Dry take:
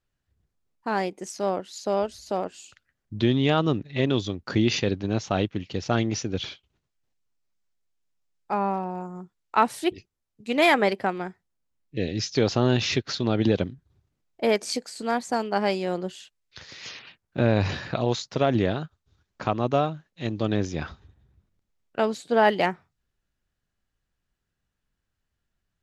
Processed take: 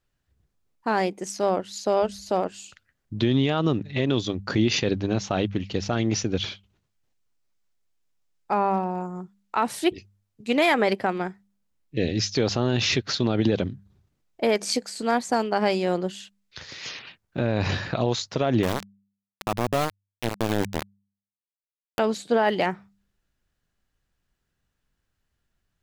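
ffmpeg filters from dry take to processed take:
-filter_complex "[0:a]asettb=1/sr,asplit=3[a][b][c];[a]atrim=end=18.634[d];[b]atrim=start=18.63:end=21.99,asetpts=PTS-STARTPTS,afade=t=in:d=0.004:c=qsin,afade=t=out:st=3.356:d=0.004:c=qsin,aeval=exprs='val(0)*gte(abs(val(0)),0.0708)':c=same[e];[c]atrim=start=21.986[f];[d][e]acrossfade=d=0.004:c1=hsin:c2=qsin[g];[g][f]acrossfade=d=0.004:c1=qsin:c2=hsin,bandreject=f=99.5:t=h:w=4,bandreject=f=199:t=h:w=4,alimiter=limit=-15dB:level=0:latency=1:release=56,volume=3.5dB"

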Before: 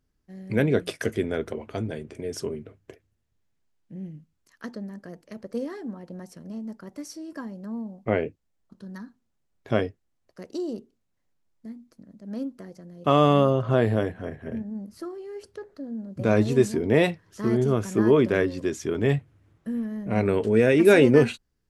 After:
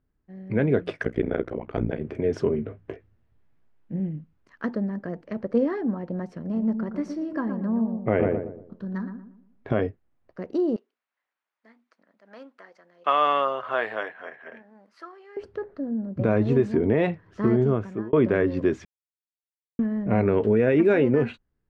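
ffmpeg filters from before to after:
-filter_complex "[0:a]asettb=1/sr,asplit=3[a][b][c];[a]atrim=end=1.034[d];[b]atrim=start=1.03:end=2.01,asetpts=PTS-STARTPTS,afade=t=in:d=0.004:c=qsin,afade=t=out:st=0.976:d=0.004:c=qsin,tremolo=f=60:d=1[e];[c]atrim=start=2.006[f];[d][e]acrossfade=d=0.004:c1=hsin:c2=qsin[g];[g][f]acrossfade=d=0.004:c1=qsin:c2=hsin,asettb=1/sr,asplit=3[h][i][j];[h]atrim=end=2.564[k];[i]atrim=start=2.56:end=4,asetpts=PTS-STARTPTS,afade=t=in:d=0.004:c=qsin,afade=t=out:st=1.436:d=0.004:c=qsin,asplit=2[l][m];[m]adelay=18,volume=-6dB[n];[l][n]amix=inputs=2:normalize=0,atrim=end_sample=63504[o];[j]atrim=start=3.996[p];[k][o]acrossfade=d=0.004:c1=hsin:c2=qsin[q];[q][p]acrossfade=d=0.004:c1=qsin:c2=hsin,asettb=1/sr,asplit=3[r][s][t];[r]atrim=end=6.434[u];[s]atrim=start=6.43:end=9.82,asetpts=PTS-STARTPTS,afade=t=in:d=0.004:c=qsin,afade=t=out:st=3.386:d=0.004:c=qsin,asplit=2[v][w];[w]adelay=117,lowpass=f=1.1k:p=1,volume=-5.5dB,asplit=2[x][y];[y]adelay=117,lowpass=f=1.1k:p=1,volume=0.39,asplit=2[z][aa];[aa]adelay=117,lowpass=f=1.1k:p=1,volume=0.39,asplit=2[ab][ac];[ac]adelay=117,lowpass=f=1.1k:p=1,volume=0.39,asplit=2[ad][ae];[ae]adelay=117,lowpass=f=1.1k:p=1,volume=0.39[af];[v][x][z][ab][ad][af]amix=inputs=6:normalize=0,atrim=end_sample=149499[ag];[t]atrim=start=9.816[ah];[u][ag]acrossfade=d=0.004:c1=hsin:c2=qsin[ai];[ai][ah]acrossfade=d=0.004:c1=qsin:c2=hsin,asettb=1/sr,asplit=3[aj][ak][al];[aj]atrim=end=10.764[am];[ak]atrim=start=10.76:end=15.37,asetpts=PTS-STARTPTS,afade=t=in:d=0.004:c=qsin,afade=t=out:st=4.606:d=0.004:c=qsin,highpass=1.2k[an];[al]atrim=start=15.366[ao];[am][an]acrossfade=d=0.004:c1=hsin:c2=qsin[ap];[ap][ao]acrossfade=d=0.004:c1=qsin:c2=hsin,asplit=4[aq][ar][as][at];[aq]atrim=end=18.13,asetpts=PTS-STARTPTS,afade=t=out:st=17.45:d=0.68[au];[ar]atrim=start=18.13:end=18.85,asetpts=PTS-STARTPTS,afade=t=in:d=0.004:c=hsin,afade=t=out:st=0.716:d=0.004:c=hsin[av];[as]atrim=start=18.85:end=19.79,asetpts=PTS-STARTPTS,volume=0[aw];[at]atrim=start=19.79,asetpts=PTS-STARTPTS,afade=t=in:d=0.004:c=hsin[ax];[au][av][aw][ax]concat=n=4:v=0:a=1,lowpass=2k,dynaudnorm=f=180:g=11:m=8.5dB,alimiter=limit=-11dB:level=0:latency=1:release=160"

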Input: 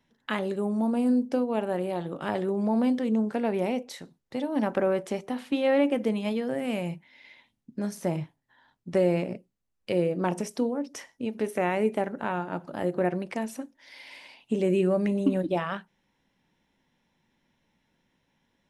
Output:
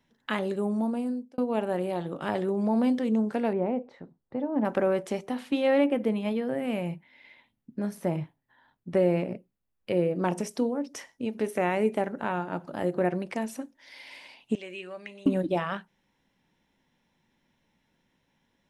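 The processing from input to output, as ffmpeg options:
-filter_complex "[0:a]asettb=1/sr,asplit=3[a][b][c];[a]atrim=end=3.534[d];[b]atrim=start=3.53:end=4.65,asetpts=PTS-STARTPTS,afade=t=in:d=0.004:c=qsin,afade=t=out:st=1.116:d=0.004:c=qsin,lowpass=1.2k[e];[c]atrim=start=4.646[f];[d][e]acrossfade=d=0.004:c1=hsin:c2=qsin[g];[g][f]acrossfade=d=0.004:c1=qsin:c2=hsin,asettb=1/sr,asplit=3[h][i][j];[h]atrim=end=5.844[k];[i]atrim=start=5.84:end=10.16,asetpts=PTS-STARTPTS,afade=t=in:d=0.004:c=qsin,afade=t=out:st=4.316:d=0.004:c=qsin,equalizer=f=6.3k:w=0.91:g=-10[l];[j]atrim=start=10.156[m];[k][l]acrossfade=d=0.004:c1=hsin:c2=qsin[n];[n][m]acrossfade=d=0.004:c1=qsin:c2=hsin,asettb=1/sr,asplit=3[o][p][q];[o]atrim=end=14.554[r];[p]atrim=start=14.55:end=15.26,asetpts=PTS-STARTPTS,afade=t=in:d=0.004:c=qsin,afade=t=out:st=0.706:d=0.004:c=qsin,bandpass=f=2.7k:t=q:w=1.2[s];[q]atrim=start=15.256[t];[r][s]acrossfade=d=0.004:c1=hsin:c2=qsin[u];[u][t]acrossfade=d=0.004:c1=qsin:c2=hsin,asplit=2[v][w];[v]atrim=end=1.38,asetpts=PTS-STARTPTS,afade=t=out:st=0.72:d=0.66[x];[w]atrim=start=1.38,asetpts=PTS-STARTPTS,afade=t=in:d=0.004:c=hsin[y];[x][y]concat=n=2:v=0:a=1"

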